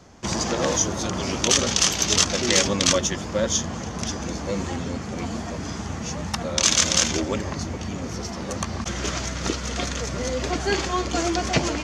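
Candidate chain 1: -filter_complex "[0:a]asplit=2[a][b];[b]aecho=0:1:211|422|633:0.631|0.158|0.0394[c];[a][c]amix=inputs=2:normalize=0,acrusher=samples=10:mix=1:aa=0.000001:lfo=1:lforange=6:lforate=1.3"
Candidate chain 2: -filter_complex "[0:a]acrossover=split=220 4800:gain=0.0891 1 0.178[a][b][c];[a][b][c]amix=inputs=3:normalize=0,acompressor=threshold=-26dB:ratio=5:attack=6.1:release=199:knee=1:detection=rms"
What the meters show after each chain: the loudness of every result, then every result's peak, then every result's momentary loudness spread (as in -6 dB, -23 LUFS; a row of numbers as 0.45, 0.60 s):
-23.0, -31.5 LUFS; -2.5, -12.5 dBFS; 11, 5 LU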